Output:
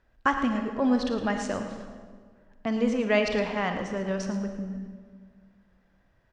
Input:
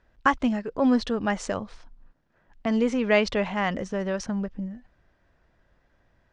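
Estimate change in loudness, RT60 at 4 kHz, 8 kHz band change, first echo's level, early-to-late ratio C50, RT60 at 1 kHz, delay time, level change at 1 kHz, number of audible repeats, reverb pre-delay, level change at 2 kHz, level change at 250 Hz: -2.0 dB, 1.3 s, -2.0 dB, -11.5 dB, 5.5 dB, 1.6 s, 111 ms, -2.0 dB, 1, 29 ms, -2.0 dB, -1.5 dB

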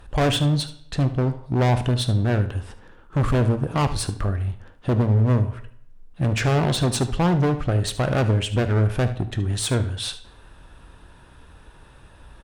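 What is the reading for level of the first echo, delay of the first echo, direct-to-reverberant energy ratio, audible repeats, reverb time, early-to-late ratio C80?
-15.0 dB, 74 ms, 9.5 dB, 1, 0.65 s, 17.0 dB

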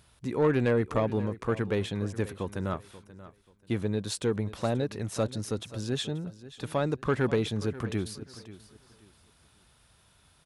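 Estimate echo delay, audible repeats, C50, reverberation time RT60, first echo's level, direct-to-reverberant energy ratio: 534 ms, 2, no reverb, no reverb, -16.5 dB, no reverb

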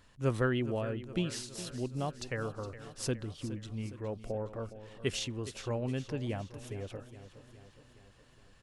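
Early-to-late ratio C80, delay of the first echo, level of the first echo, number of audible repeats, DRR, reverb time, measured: no reverb, 415 ms, -14.0 dB, 5, no reverb, no reverb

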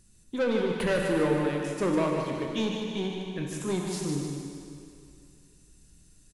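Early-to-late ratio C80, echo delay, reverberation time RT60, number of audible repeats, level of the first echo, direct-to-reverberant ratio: 1.0 dB, 152 ms, 2.5 s, 2, -6.5 dB, -0.5 dB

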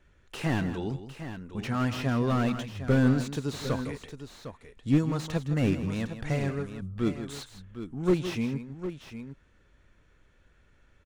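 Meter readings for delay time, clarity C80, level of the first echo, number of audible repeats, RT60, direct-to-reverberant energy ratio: 162 ms, no reverb, -11.5 dB, 2, no reverb, no reverb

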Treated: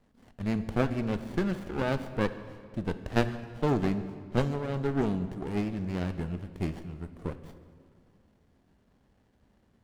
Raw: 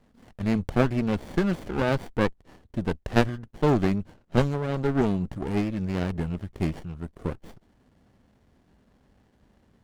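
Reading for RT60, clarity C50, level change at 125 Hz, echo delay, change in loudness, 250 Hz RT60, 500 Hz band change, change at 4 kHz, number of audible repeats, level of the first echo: 2.2 s, 12.0 dB, -4.5 dB, no echo, -4.5 dB, 2.4 s, -4.5 dB, -4.5 dB, no echo, no echo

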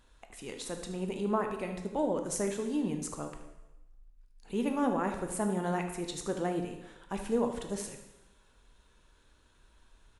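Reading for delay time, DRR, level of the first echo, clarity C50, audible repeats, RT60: 76 ms, 4.5 dB, -13.0 dB, 6.5 dB, 1, 1.0 s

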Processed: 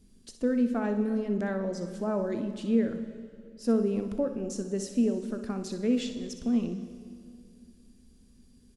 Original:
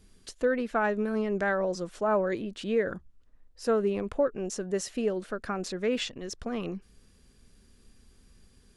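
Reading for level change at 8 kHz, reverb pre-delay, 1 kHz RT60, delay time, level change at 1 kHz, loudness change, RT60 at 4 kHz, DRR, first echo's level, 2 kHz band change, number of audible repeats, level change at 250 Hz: -3.0 dB, 3 ms, 2.1 s, 62 ms, -8.0 dB, 0.0 dB, 2.1 s, 7.0 dB, -11.5 dB, -10.0 dB, 1, +5.5 dB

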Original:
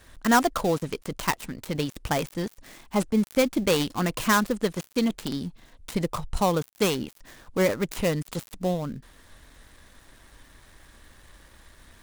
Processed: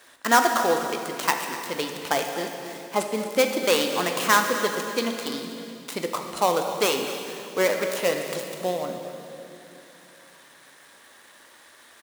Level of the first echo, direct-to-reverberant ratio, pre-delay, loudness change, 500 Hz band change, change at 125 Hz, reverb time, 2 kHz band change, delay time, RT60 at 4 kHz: -14.0 dB, 3.5 dB, 8 ms, +2.0 dB, +2.5 dB, -10.5 dB, 3.0 s, +4.5 dB, 245 ms, 2.7 s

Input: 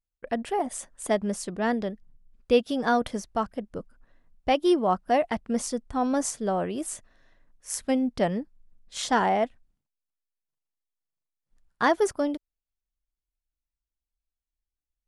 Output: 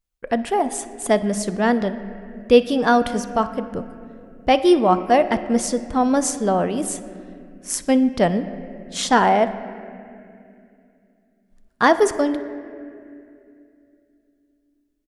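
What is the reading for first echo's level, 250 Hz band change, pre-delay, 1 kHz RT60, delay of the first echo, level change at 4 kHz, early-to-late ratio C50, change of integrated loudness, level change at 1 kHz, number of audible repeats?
-22.0 dB, +8.0 dB, 4 ms, 2.2 s, 61 ms, +7.0 dB, 12.5 dB, +7.5 dB, +7.5 dB, 1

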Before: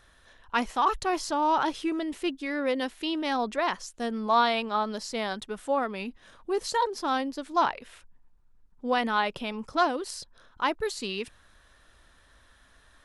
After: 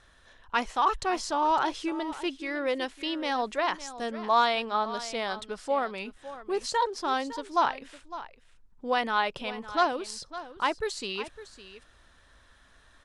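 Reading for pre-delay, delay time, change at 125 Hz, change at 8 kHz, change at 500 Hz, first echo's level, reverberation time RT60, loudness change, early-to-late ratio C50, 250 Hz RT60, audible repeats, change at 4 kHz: no reverb, 557 ms, no reading, -0.5 dB, -1.0 dB, -14.5 dB, no reverb, -0.5 dB, no reverb, no reverb, 1, 0.0 dB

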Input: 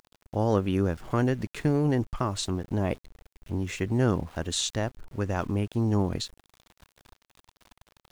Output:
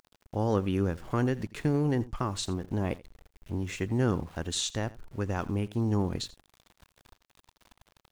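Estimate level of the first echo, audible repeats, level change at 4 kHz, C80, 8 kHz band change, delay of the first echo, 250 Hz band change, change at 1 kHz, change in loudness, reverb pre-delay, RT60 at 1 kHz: -19.5 dB, 1, -2.5 dB, no reverb, -2.5 dB, 83 ms, -2.5 dB, -3.0 dB, -2.5 dB, no reverb, no reverb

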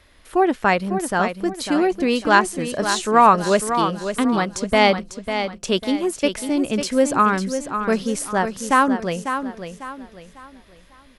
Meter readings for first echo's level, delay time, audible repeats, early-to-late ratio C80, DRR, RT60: -8.5 dB, 548 ms, 3, no reverb, no reverb, no reverb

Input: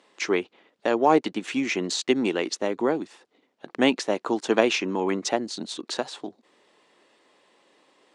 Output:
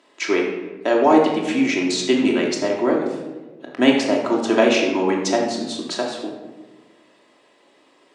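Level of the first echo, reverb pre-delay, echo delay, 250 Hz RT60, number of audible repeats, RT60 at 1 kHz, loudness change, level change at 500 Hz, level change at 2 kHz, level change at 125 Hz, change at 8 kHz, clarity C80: no echo, 3 ms, no echo, 1.7 s, no echo, 1.1 s, +6.0 dB, +6.0 dB, +5.0 dB, +4.5 dB, +3.5 dB, 6.0 dB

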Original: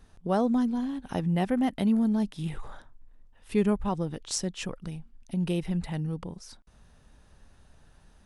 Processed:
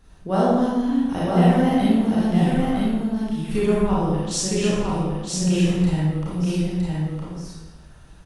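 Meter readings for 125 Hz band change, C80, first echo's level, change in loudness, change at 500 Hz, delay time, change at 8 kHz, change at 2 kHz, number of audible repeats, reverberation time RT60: +11.0 dB, -2.5 dB, -3.5 dB, +7.5 dB, +9.5 dB, 962 ms, +9.5 dB, +9.5 dB, 1, 1.1 s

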